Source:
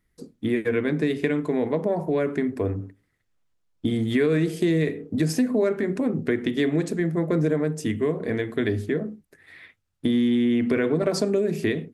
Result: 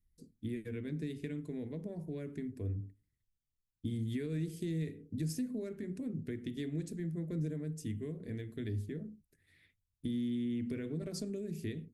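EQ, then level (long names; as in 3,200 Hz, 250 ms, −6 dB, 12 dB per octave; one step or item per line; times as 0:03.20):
guitar amp tone stack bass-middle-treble 10-0-1
high-shelf EQ 6,000 Hz +8.5 dB
+3.5 dB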